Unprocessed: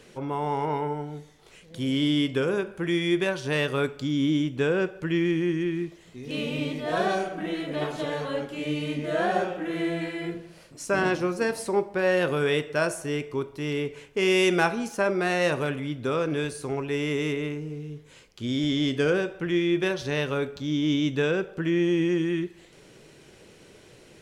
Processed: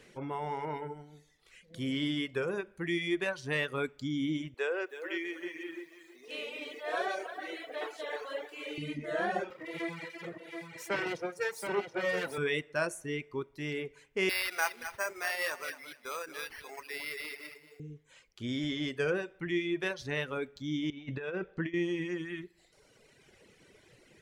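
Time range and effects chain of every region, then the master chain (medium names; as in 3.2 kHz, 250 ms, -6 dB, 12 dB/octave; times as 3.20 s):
4.54–8.78 s: high-pass 390 Hz 24 dB/octave + bit-crushed delay 319 ms, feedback 35%, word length 9-bit, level -7 dB
9.50–12.38 s: comb filter that takes the minimum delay 2.1 ms + high-pass 120 Hz 24 dB/octave + delay 725 ms -5.5 dB
14.29–17.80 s: high-pass 780 Hz + feedback delay 228 ms, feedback 25%, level -7 dB + careless resampling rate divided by 6×, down none, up hold
20.90–21.74 s: distance through air 130 m + compressor with a negative ratio -27 dBFS, ratio -0.5 + doubling 22 ms -13.5 dB
whole clip: reverb removal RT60 1.5 s; peaking EQ 2 kHz +6 dB 0.54 oct; trim -6.5 dB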